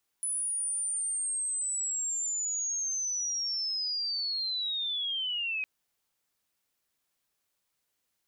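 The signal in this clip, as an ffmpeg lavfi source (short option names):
-f lavfi -i "aevalsrc='pow(10,(-29-0.5*t/5.41)/20)*sin(2*PI*(10000*t-7500*t*t/(2*5.41)))':d=5.41:s=44100"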